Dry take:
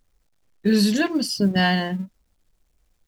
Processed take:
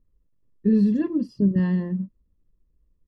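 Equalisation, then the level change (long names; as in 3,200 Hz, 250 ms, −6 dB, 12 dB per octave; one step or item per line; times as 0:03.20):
moving average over 59 samples
+1.5 dB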